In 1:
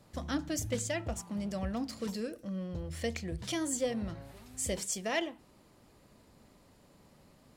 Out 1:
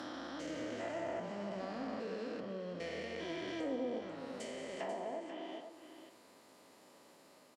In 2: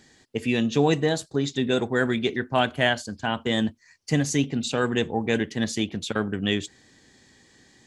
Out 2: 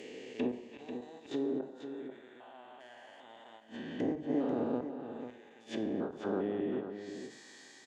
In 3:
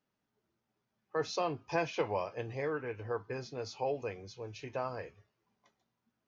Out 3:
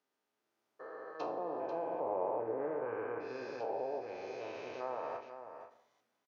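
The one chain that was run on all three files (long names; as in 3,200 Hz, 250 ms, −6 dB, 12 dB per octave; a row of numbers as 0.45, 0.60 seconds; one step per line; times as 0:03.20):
spectrum averaged block by block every 400 ms
high-pass filter 360 Hz 12 dB per octave
dynamic equaliser 860 Hz, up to +8 dB, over −50 dBFS, Q 1.9
automatic gain control gain up to 3 dB
gate with flip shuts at −19 dBFS, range −30 dB
treble cut that deepens with the level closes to 650 Hz, closed at −33.5 dBFS
single-tap delay 491 ms −9.5 dB
coupled-rooms reverb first 0.52 s, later 1.5 s, DRR 8 dB
every ending faded ahead of time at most 160 dB per second
level +1 dB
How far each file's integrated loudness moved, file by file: −6.0, −12.5, −2.0 LU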